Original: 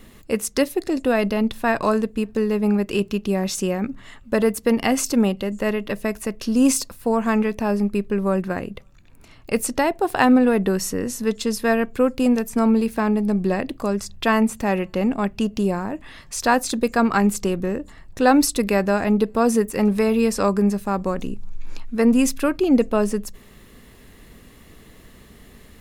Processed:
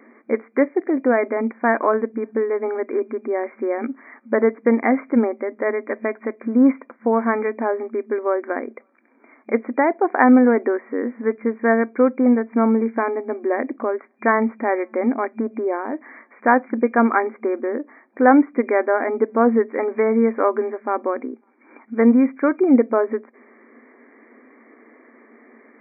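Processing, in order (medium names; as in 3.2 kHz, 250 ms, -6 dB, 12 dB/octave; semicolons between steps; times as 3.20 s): FFT band-pass 220–2400 Hz; trim +2.5 dB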